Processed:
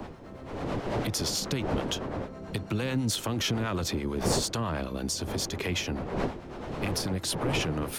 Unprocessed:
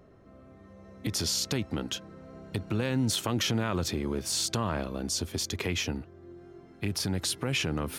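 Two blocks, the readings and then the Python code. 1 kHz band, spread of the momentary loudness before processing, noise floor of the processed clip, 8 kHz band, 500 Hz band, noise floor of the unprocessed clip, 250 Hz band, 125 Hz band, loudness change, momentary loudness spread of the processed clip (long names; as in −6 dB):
+3.5 dB, 11 LU, −43 dBFS, −1.0 dB, +3.5 dB, −53 dBFS, +1.0 dB, +1.0 dB, 0.0 dB, 9 LU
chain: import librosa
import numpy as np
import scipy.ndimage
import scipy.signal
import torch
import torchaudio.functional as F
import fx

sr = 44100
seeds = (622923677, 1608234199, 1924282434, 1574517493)

p1 = fx.dmg_wind(x, sr, seeds[0], corner_hz=540.0, level_db=-35.0)
p2 = fx.harmonic_tremolo(p1, sr, hz=9.1, depth_pct=50, crossover_hz=550.0)
p3 = 10.0 ** (-32.0 / 20.0) * np.tanh(p2 / 10.0 ** (-32.0 / 20.0))
p4 = p2 + (p3 * 10.0 ** (-8.5 / 20.0))
y = fx.band_squash(p4, sr, depth_pct=40)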